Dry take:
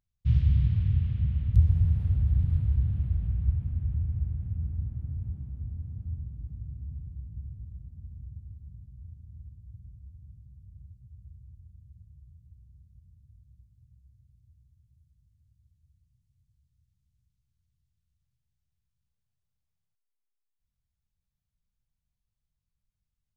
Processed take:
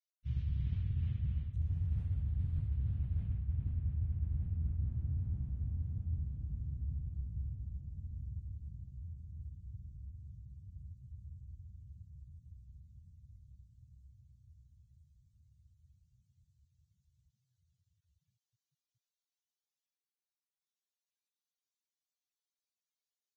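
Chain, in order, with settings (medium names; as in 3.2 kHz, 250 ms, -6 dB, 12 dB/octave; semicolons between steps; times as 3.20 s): de-hum 55.36 Hz, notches 5; reverse; compression 20:1, threshold -31 dBFS, peak gain reduction 17 dB; reverse; Vorbis 16 kbps 22.05 kHz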